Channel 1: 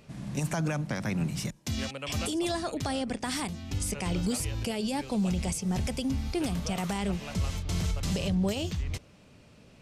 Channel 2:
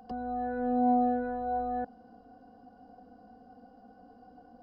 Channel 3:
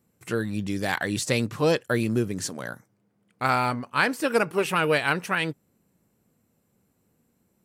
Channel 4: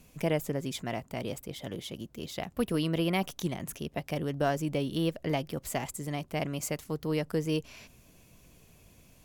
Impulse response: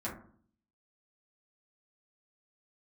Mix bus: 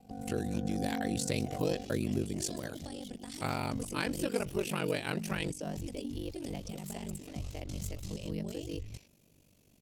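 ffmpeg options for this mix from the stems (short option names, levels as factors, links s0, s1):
-filter_complex "[0:a]volume=0.447[s0];[1:a]volume=0.944[s1];[2:a]volume=1.19[s2];[3:a]highpass=f=250:w=0.5412,highpass=f=250:w=1.3066,adelay=1200,volume=0.562[s3];[s0][s1][s2][s3]amix=inputs=4:normalize=0,equalizer=f=1300:t=o:w=1.9:g=-11.5,aeval=exprs='val(0)*sin(2*PI*24*n/s)':c=same,acompressor=threshold=0.0251:ratio=2"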